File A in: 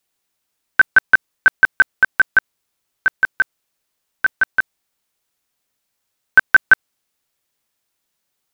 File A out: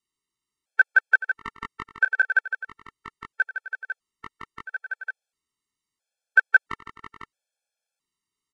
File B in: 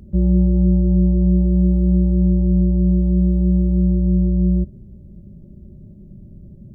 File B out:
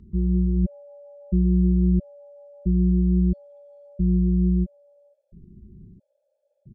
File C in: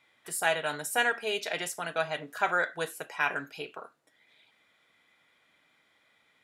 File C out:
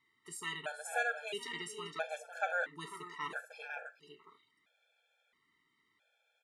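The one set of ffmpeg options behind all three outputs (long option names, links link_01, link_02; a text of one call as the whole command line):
ffmpeg -i in.wav -filter_complex "[0:a]lowpass=frequency=10000:width=0.5412,lowpass=frequency=10000:width=1.3066,asplit=2[link_01][link_02];[link_02]aecho=0:1:429|500:0.168|0.376[link_03];[link_01][link_03]amix=inputs=2:normalize=0,afftfilt=real='re*gt(sin(2*PI*0.75*pts/sr)*(1-2*mod(floor(b*sr/1024/450),2)),0)':imag='im*gt(sin(2*PI*0.75*pts/sr)*(1-2*mod(floor(b*sr/1024/450),2)),0)':win_size=1024:overlap=0.75,volume=-6.5dB" out.wav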